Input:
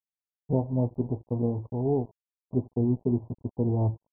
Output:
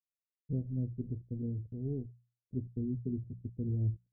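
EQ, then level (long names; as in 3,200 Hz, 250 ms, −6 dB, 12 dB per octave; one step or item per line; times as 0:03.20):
Gaussian smoothing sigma 24 samples
low-shelf EQ 120 Hz +7 dB
mains-hum notches 60/120/180 Hz
−8.0 dB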